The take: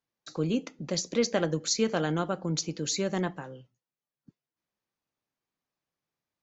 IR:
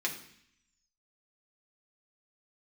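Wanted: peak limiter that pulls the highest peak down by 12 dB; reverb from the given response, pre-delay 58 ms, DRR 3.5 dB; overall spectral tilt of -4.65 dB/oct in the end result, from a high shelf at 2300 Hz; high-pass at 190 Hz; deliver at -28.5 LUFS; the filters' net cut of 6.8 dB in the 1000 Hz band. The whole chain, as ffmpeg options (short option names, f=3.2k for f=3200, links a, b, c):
-filter_complex "[0:a]highpass=190,equalizer=f=1k:t=o:g=-8.5,highshelf=f=2.3k:g=-8,alimiter=level_in=5dB:limit=-24dB:level=0:latency=1,volume=-5dB,asplit=2[a][b];[1:a]atrim=start_sample=2205,adelay=58[c];[b][c]afir=irnorm=-1:irlink=0,volume=-8.5dB[d];[a][d]amix=inputs=2:normalize=0,volume=9dB"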